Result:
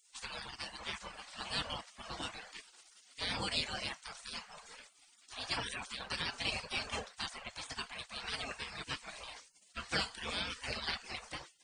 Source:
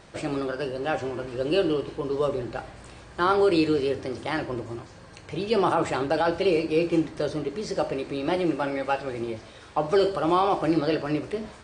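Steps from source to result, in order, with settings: reverb removal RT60 0.7 s; notches 50/100/150/200/250/300/350 Hz; spectral gate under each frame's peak -25 dB weak; gain +4 dB

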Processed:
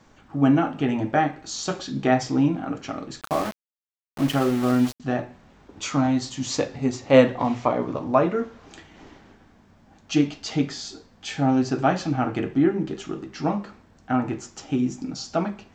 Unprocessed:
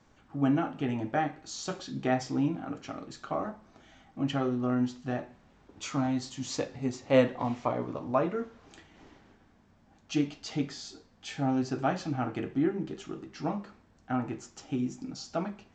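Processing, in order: notches 60/120 Hz; 3.21–5 sample gate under -36.5 dBFS; gain +8 dB

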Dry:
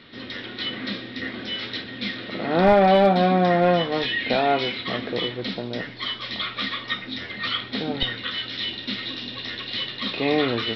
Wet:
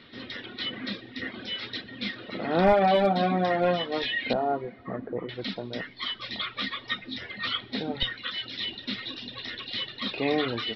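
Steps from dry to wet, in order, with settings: 4.33–5.29 Bessel low-pass 1000 Hz, order 8; reverb removal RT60 0.97 s; on a send: reverb RT60 2.7 s, pre-delay 4 ms, DRR 23 dB; on the sum: gain -3 dB

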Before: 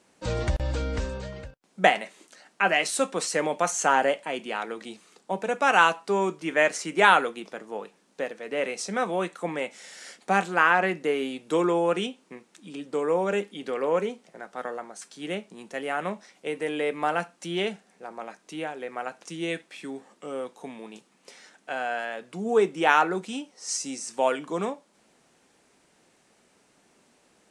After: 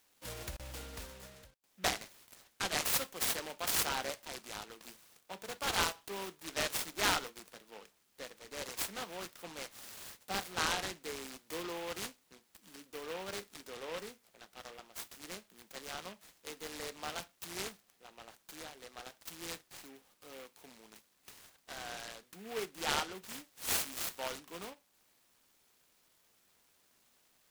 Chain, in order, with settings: pre-emphasis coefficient 0.9; noise-modulated delay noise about 1900 Hz, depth 0.12 ms

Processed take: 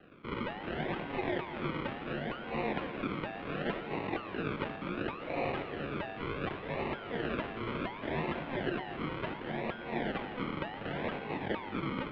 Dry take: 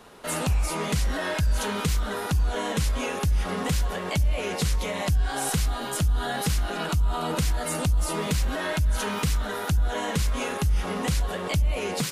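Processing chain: decimation with a swept rate 35×, swing 60% 0.69 Hz; multi-head echo 0.119 s, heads first and second, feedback 67%, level -17 dB; mistuned SSB -260 Hz 430–3400 Hz; gain -2.5 dB

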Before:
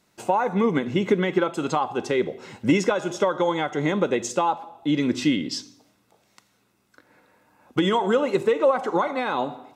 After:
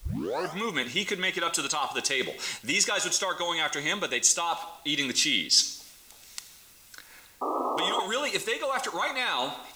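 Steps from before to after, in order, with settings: tape start at the beginning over 0.59 s; tilt shelf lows -8.5 dB; painted sound noise, 7.41–8, 250–1300 Hz -18 dBFS; reverse; compressor 6:1, threshold -28 dBFS, peak gain reduction 13.5 dB; reverse; added noise pink -64 dBFS; high shelf 2600 Hz +12 dB

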